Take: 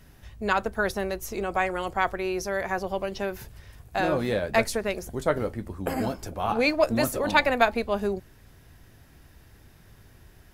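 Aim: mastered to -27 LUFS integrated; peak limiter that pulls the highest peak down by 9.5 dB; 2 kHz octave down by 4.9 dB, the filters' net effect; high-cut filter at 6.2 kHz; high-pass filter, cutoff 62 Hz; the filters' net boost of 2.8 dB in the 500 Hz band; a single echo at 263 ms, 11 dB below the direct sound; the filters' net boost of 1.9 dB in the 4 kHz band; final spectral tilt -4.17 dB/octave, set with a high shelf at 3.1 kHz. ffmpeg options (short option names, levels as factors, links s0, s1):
-af "highpass=62,lowpass=6200,equalizer=f=500:t=o:g=4,equalizer=f=2000:t=o:g=-7,highshelf=f=3100:g=-5,equalizer=f=4000:t=o:g=8,alimiter=limit=0.168:level=0:latency=1,aecho=1:1:263:0.282,volume=1.06"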